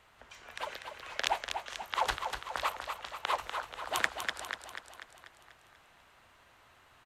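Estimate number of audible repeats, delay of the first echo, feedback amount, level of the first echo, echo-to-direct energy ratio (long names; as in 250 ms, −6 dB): 6, 244 ms, 56%, −6.5 dB, −5.0 dB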